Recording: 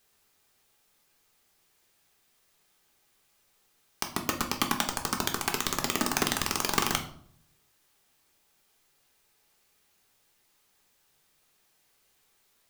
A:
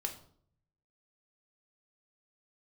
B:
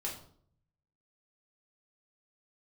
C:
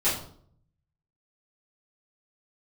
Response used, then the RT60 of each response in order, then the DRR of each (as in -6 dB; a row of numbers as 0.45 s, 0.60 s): A; 0.60 s, 0.60 s, 0.60 s; 3.5 dB, -3.0 dB, -12.5 dB